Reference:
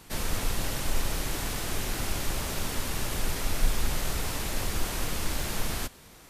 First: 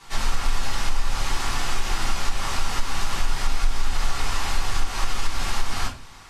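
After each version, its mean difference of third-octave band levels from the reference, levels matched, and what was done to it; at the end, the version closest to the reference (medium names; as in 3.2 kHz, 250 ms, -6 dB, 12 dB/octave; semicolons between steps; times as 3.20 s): 5.5 dB: resonant low shelf 680 Hz -8 dB, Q 1.5; simulated room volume 140 m³, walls furnished, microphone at 3.5 m; compression 5:1, threshold -14 dBFS, peak gain reduction 8 dB; low-pass 7.4 kHz 12 dB/octave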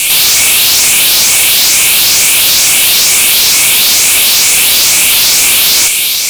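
11.0 dB: drifting ripple filter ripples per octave 0.51, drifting +2.2 Hz, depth 8 dB; Chebyshev high-pass 2.2 kHz, order 8; in parallel at -0.5 dB: compressor with a negative ratio -44 dBFS, ratio -1; on the sum: fuzz box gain 46 dB, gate -53 dBFS; trim +7.5 dB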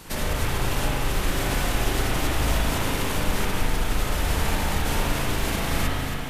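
4.0 dB: peak limiter -23 dBFS, peak gain reduction 10.5 dB; compression 4:1, threshold -33 dBFS, peak gain reduction 6 dB; on a send: echo whose repeats swap between lows and highs 137 ms, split 1.2 kHz, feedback 72%, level -4 dB; on the sum: spring tank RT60 1.8 s, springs 38/56 ms, chirp 75 ms, DRR -5 dB; trim +7 dB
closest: third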